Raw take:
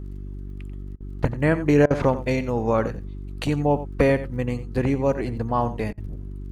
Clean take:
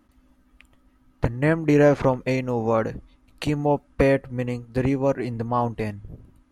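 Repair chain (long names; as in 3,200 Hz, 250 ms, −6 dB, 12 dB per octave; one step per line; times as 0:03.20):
click removal
hum removal 48.6 Hz, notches 8
repair the gap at 0:00.96/0:01.86/0:05.93, 44 ms
echo removal 89 ms −14 dB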